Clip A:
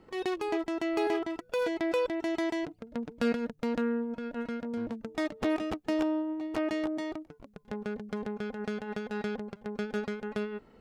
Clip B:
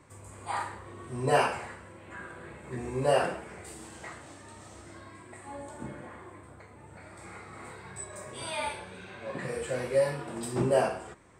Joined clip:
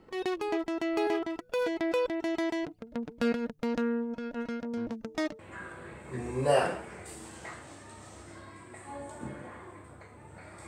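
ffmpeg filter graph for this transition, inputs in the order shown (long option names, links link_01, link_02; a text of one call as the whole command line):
ffmpeg -i cue0.wav -i cue1.wav -filter_complex "[0:a]asettb=1/sr,asplit=3[link_01][link_02][link_03];[link_01]atrim=end=3.694[link_04];[link_02]atrim=start=3.69:end=5.39,asetpts=PTS-STARTPTS,afade=type=in:duration=0.004:curve=qsin,afade=type=out:start_time=1.696:duration=0.004:curve=qsin,equalizer=frequency=5800:width=2:gain=5.5[link_05];[link_03]atrim=start=5.386[link_06];[link_04][link_05]acrossfade=duration=0.004:curve1=hsin:curve2=qsin[link_07];[link_07][link_06]acrossfade=duration=0.004:curve1=qsin:curve2=hsin,apad=whole_dur=10.67,atrim=end=10.67,atrim=end=5.392[link_08];[1:a]atrim=start=1.978:end=7.26[link_09];[link_08][link_09]acrossfade=duration=0.004:curve1=hsin:curve2=hsin" out.wav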